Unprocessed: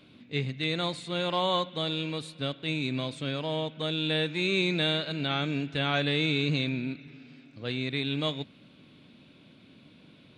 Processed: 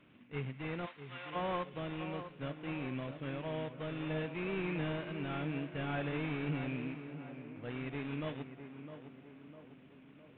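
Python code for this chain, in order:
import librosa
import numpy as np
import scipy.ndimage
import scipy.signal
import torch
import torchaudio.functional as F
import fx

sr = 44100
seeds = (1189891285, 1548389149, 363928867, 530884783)

y = fx.cvsd(x, sr, bps=16000)
y = fx.highpass(y, sr, hz=1100.0, slope=12, at=(0.85, 1.34), fade=0.02)
y = fx.echo_tape(y, sr, ms=656, feedback_pct=61, wet_db=-8, lp_hz=1500.0, drive_db=20.0, wow_cents=37)
y = y * 10.0 ** (-7.5 / 20.0)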